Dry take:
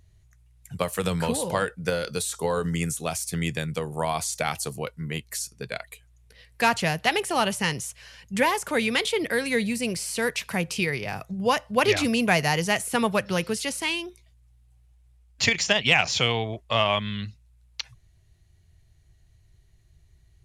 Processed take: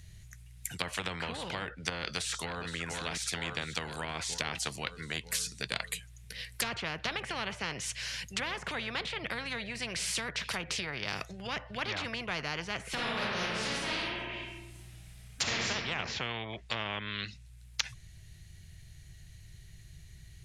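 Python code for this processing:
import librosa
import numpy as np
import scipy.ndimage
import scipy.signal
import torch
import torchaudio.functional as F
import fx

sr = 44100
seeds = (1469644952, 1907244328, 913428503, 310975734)

y = fx.echo_throw(x, sr, start_s=1.99, length_s=0.71, ms=470, feedback_pct=55, wet_db=-7.5)
y = fx.reverb_throw(y, sr, start_s=12.91, length_s=2.75, rt60_s=1.0, drr_db=-11.0)
y = fx.env_lowpass_down(y, sr, base_hz=1300.0, full_db=-22.0)
y = fx.band_shelf(y, sr, hz=560.0, db=-9.5, octaves=2.6)
y = fx.spectral_comp(y, sr, ratio=4.0)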